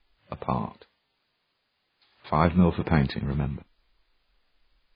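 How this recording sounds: a quantiser's noise floor 12-bit, dither triangular; MP3

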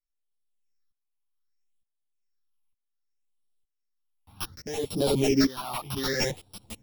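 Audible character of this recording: a buzz of ramps at a fixed pitch in blocks of 8 samples; phasing stages 6, 0.65 Hz, lowest notch 440–1800 Hz; tremolo saw up 1.1 Hz, depth 85%; a shimmering, thickened sound

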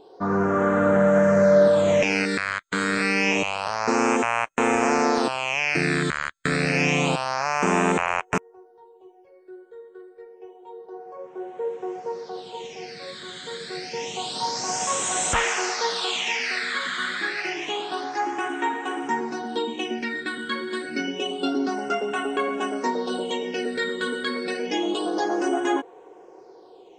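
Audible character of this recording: phasing stages 8, 0.28 Hz, lowest notch 770–4600 Hz

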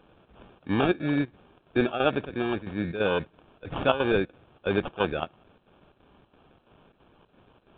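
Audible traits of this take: a quantiser's noise floor 10-bit, dither none; chopped level 3 Hz, depth 65%, duty 75%; aliases and images of a low sample rate 2000 Hz, jitter 0%; µ-law

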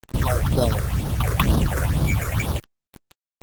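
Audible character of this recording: aliases and images of a low sample rate 4600 Hz, jitter 0%; phasing stages 6, 2.1 Hz, lowest notch 210–2300 Hz; a quantiser's noise floor 6-bit, dither none; Opus

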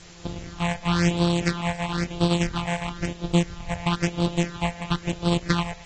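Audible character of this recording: a buzz of ramps at a fixed pitch in blocks of 256 samples; phasing stages 6, 1 Hz, lowest notch 330–1900 Hz; a quantiser's noise floor 8-bit, dither triangular; AAC

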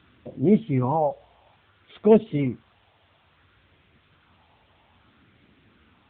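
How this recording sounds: phasing stages 4, 0.59 Hz, lowest notch 300–1000 Hz; a quantiser's noise floor 10-bit, dither triangular; AMR-NB

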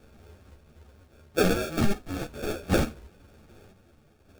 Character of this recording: phasing stages 4, 1.2 Hz, lowest notch 770–2100 Hz; random-step tremolo; aliases and images of a low sample rate 1000 Hz, jitter 0%; a shimmering, thickened sound

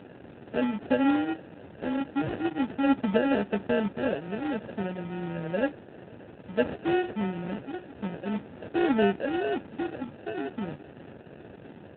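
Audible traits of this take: a quantiser's noise floor 8-bit, dither triangular; phasing stages 2, 0.36 Hz, lowest notch 540–1200 Hz; aliases and images of a low sample rate 1100 Hz, jitter 0%; AMR-NB

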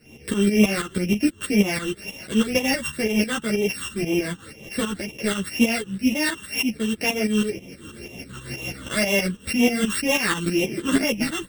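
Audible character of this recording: a buzz of ramps at a fixed pitch in blocks of 16 samples; phasing stages 8, 2 Hz, lowest notch 660–1400 Hz; tremolo saw up 6.2 Hz, depth 75%; a shimmering, thickened sound

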